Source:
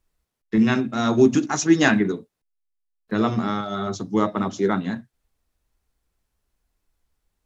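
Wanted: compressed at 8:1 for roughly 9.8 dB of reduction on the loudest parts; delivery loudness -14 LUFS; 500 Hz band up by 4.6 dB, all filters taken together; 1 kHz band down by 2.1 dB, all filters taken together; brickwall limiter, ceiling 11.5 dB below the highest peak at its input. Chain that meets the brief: peaking EQ 500 Hz +8 dB; peaking EQ 1 kHz -6 dB; compression 8:1, threshold -17 dBFS; trim +16 dB; peak limiter -4.5 dBFS

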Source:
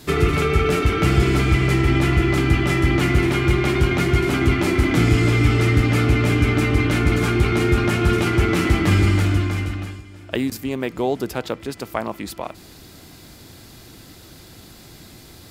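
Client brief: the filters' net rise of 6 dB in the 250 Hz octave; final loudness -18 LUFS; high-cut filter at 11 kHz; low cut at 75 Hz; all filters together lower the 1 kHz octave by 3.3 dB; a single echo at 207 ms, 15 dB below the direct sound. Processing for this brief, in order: high-pass 75 Hz; low-pass 11 kHz; peaking EQ 250 Hz +8.5 dB; peaking EQ 1 kHz -5.5 dB; delay 207 ms -15 dB; trim -1.5 dB

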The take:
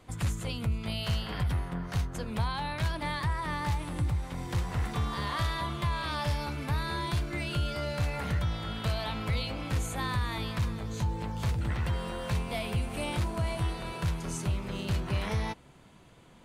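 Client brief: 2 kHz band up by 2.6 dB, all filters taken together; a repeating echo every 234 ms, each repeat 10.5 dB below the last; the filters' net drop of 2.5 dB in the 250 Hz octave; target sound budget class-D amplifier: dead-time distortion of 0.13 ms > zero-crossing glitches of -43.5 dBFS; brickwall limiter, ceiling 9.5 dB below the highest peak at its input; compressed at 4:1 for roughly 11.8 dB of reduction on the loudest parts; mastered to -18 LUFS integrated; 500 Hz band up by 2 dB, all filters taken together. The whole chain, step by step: peaking EQ 250 Hz -5 dB; peaking EQ 500 Hz +3.5 dB; peaking EQ 2 kHz +3 dB; compression 4:1, threshold -40 dBFS; peak limiter -35.5 dBFS; feedback delay 234 ms, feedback 30%, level -10.5 dB; dead-time distortion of 0.13 ms; zero-crossing glitches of -43.5 dBFS; trim +26.5 dB

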